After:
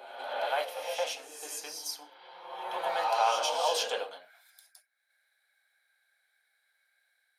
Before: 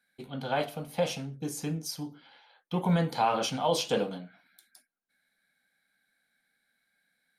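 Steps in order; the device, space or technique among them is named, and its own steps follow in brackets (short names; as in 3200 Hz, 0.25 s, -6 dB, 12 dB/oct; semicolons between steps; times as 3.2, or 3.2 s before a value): ghost voice (reverse; reverb RT60 1.4 s, pre-delay 88 ms, DRR 2 dB; reverse; HPF 580 Hz 24 dB/oct)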